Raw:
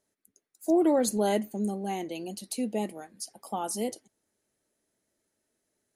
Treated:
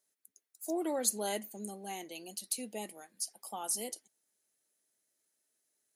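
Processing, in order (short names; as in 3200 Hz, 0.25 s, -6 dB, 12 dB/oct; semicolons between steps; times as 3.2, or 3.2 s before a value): tilt +3 dB/oct; gain -7.5 dB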